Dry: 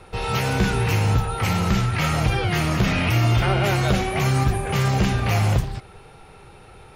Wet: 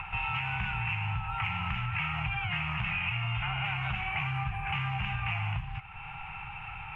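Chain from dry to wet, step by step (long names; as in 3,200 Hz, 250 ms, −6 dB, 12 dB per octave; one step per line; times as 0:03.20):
upward compression, threshold −29 dBFS
drawn EQ curve 160 Hz 0 dB, 240 Hz −20 dB, 540 Hz −24 dB, 810 Hz +6 dB, 1,800 Hz +3 dB, 2,700 Hz +14 dB, 4,200 Hz −23 dB, 6,800 Hz −26 dB
downward compressor 6 to 1, threshold −24 dBFS, peak gain reduction 11.5 dB
level −5.5 dB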